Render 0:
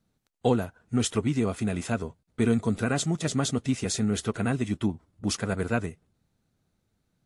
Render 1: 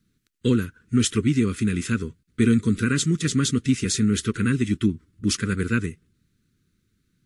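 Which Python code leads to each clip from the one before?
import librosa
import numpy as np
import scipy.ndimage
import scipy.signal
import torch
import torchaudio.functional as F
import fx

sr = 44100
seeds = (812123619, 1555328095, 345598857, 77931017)

y = scipy.signal.sosfilt(scipy.signal.cheby1(2, 1.0, [350.0, 1500.0], 'bandstop', fs=sr, output='sos'), x)
y = y * 10.0 ** (6.0 / 20.0)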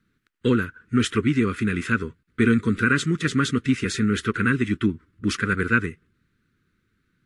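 y = fx.curve_eq(x, sr, hz=(180.0, 1500.0, 6300.0), db=(0, 11, -6))
y = y * 10.0 ** (-2.0 / 20.0)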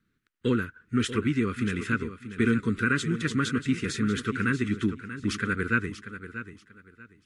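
y = fx.echo_feedback(x, sr, ms=637, feedback_pct=24, wet_db=-12.0)
y = y * 10.0 ** (-5.0 / 20.0)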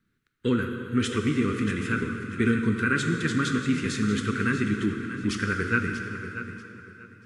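y = fx.rev_plate(x, sr, seeds[0], rt60_s=3.2, hf_ratio=0.75, predelay_ms=0, drr_db=4.0)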